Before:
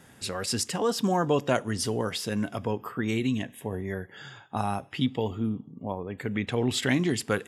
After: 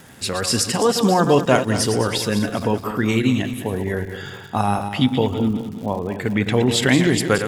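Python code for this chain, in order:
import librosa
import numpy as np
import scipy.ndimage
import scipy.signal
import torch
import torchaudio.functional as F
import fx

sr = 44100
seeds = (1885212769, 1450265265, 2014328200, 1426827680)

y = fx.reverse_delay_fb(x, sr, ms=104, feedback_pct=63, wet_db=-8.5)
y = fx.dmg_crackle(y, sr, seeds[0], per_s=160.0, level_db=-42.0)
y = F.gain(torch.from_numpy(y), 8.5).numpy()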